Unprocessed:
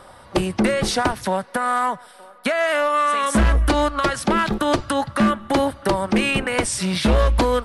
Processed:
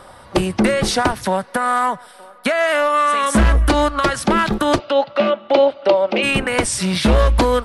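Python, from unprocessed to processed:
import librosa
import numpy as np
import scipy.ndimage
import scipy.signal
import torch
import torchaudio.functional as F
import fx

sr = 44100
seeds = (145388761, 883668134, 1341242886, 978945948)

y = fx.cabinet(x, sr, low_hz=370.0, low_slope=12, high_hz=4400.0, hz=(580.0, 1100.0, 1700.0, 2700.0), db=(9, -6, -10, 5), at=(4.78, 6.22), fade=0.02)
y = F.gain(torch.from_numpy(y), 3.0).numpy()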